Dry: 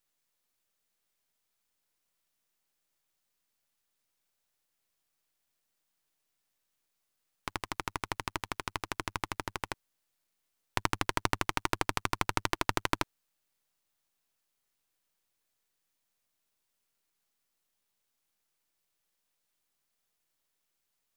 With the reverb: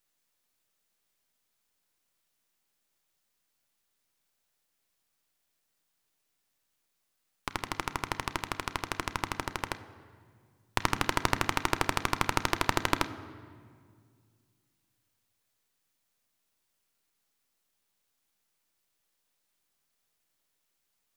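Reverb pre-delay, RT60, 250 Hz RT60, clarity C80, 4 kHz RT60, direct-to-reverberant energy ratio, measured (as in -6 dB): 3 ms, 2.0 s, 2.6 s, 14.5 dB, 1.3 s, 11.0 dB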